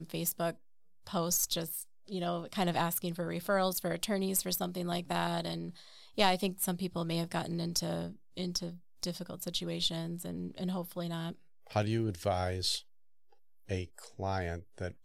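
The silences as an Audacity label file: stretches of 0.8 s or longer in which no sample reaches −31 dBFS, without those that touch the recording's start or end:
12.770000	13.710000	silence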